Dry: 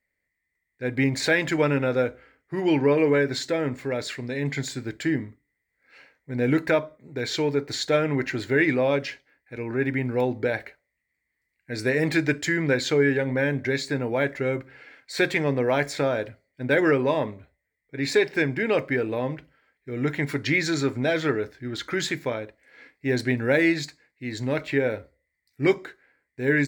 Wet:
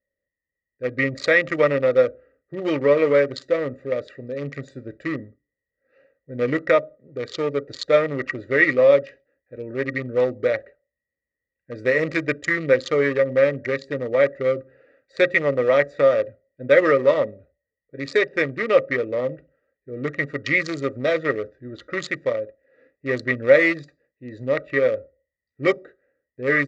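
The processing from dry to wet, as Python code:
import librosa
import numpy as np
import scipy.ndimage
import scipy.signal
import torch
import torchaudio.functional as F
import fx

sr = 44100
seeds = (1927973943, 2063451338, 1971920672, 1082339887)

y = fx.wiener(x, sr, points=41)
y = scipy.signal.sosfilt(scipy.signal.butter(4, 6900.0, 'lowpass', fs=sr, output='sos'), y)
y = fx.high_shelf(y, sr, hz=2200.0, db=9.5)
y = fx.notch(y, sr, hz=810.0, q=17.0)
y = fx.small_body(y, sr, hz=(550.0, 1200.0, 1900.0), ring_ms=35, db=17)
y = y * 10.0 ** (-4.5 / 20.0)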